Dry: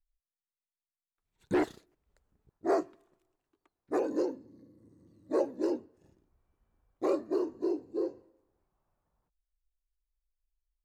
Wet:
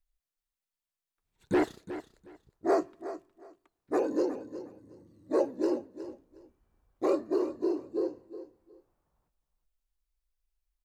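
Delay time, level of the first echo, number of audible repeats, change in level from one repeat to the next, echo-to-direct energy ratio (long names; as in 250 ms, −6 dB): 363 ms, −13.0 dB, 2, −14.0 dB, −13.0 dB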